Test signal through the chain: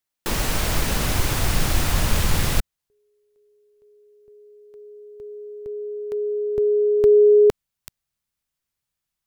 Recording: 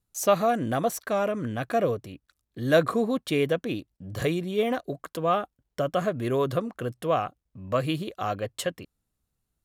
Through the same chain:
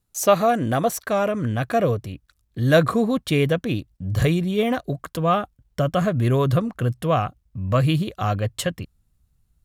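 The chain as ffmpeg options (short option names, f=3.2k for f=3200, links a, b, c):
-af "asubboost=boost=4:cutoff=170,volume=5dB"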